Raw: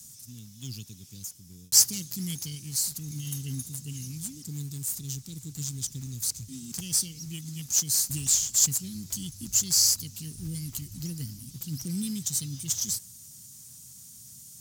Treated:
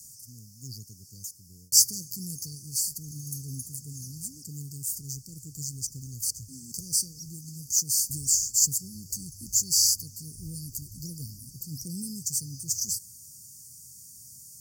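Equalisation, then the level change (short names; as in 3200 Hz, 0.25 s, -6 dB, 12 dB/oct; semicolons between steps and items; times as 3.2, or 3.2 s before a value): brick-wall FIR band-stop 570–4400 Hz; bell 240 Hz -6 dB 1.8 oct; 0.0 dB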